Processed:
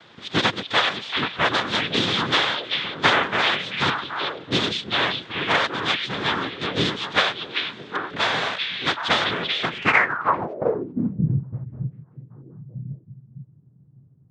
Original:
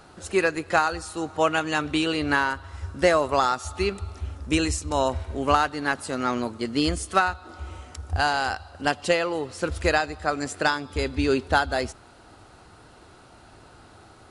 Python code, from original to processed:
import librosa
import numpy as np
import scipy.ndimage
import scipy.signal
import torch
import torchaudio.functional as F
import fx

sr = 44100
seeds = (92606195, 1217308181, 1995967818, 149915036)

y = fx.noise_vocoder(x, sr, seeds[0], bands=3)
y = fx.echo_stepped(y, sr, ms=388, hz=3000.0, octaves=-1.4, feedback_pct=70, wet_db=-1.0)
y = fx.filter_sweep_lowpass(y, sr, from_hz=3500.0, to_hz=130.0, start_s=9.74, end_s=11.31, q=5.7)
y = y * librosa.db_to_amplitude(-1.5)